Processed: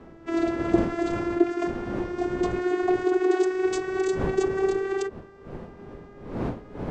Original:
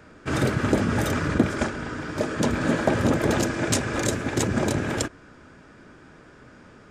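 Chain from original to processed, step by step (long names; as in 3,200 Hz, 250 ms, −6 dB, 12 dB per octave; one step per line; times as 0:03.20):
vocoder with a gliding carrier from E4, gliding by +4 semitones
wind on the microphone 390 Hz −36 dBFS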